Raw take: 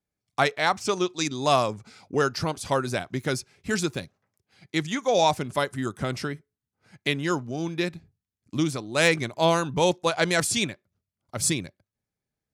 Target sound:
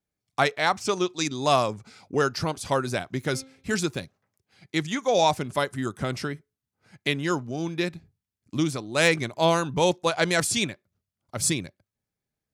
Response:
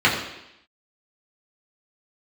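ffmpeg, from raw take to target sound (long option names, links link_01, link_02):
-filter_complex "[0:a]asettb=1/sr,asplit=3[link_01][link_02][link_03];[link_01]atrim=end=3.184[link_04];[link_02]atrim=start=3.18:end=3.77,asetpts=PTS-STARTPTS,afade=type=in:duration=0.004:curve=qsin,afade=type=out:start_time=0.586:duration=0.004:curve=qsin,bandreject=frequency=265:width_type=h:width=4,bandreject=frequency=530:width_type=h:width=4,bandreject=frequency=795:width_type=h:width=4,bandreject=frequency=1060:width_type=h:width=4,bandreject=frequency=1325:width_type=h:width=4,bandreject=frequency=1590:width_type=h:width=4,bandreject=frequency=1855:width_type=h:width=4,bandreject=frequency=2120:width_type=h:width=4,bandreject=frequency=2385:width_type=h:width=4,bandreject=frequency=2650:width_type=h:width=4,bandreject=frequency=2915:width_type=h:width=4,bandreject=frequency=3180:width_type=h:width=4,bandreject=frequency=3445:width_type=h:width=4,bandreject=frequency=3710:width_type=h:width=4,bandreject=frequency=3975:width_type=h:width=4,bandreject=frequency=4240:width_type=h:width=4[link_05];[link_03]atrim=start=3.766[link_06];[link_04][link_05]acrossfade=duration=0.004:curve1=hsin:curve2=qsin[link_07];[link_07][link_06]acrossfade=duration=0.004:curve1=qsin:curve2=hsin"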